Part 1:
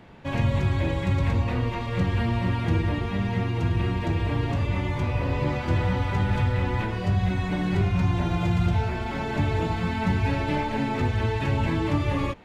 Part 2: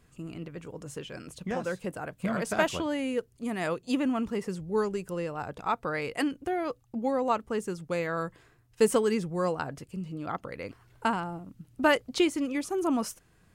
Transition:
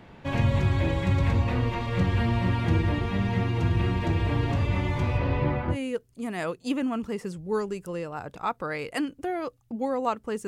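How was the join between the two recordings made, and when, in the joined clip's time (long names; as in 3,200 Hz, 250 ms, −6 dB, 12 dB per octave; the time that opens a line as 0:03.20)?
part 1
0:05.17–0:05.77: low-pass filter 5,700 Hz → 1,200 Hz
0:05.73: continue with part 2 from 0:02.96, crossfade 0.08 s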